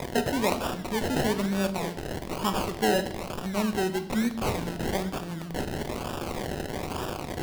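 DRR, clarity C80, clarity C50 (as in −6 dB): 7.5 dB, 15.0 dB, 12.5 dB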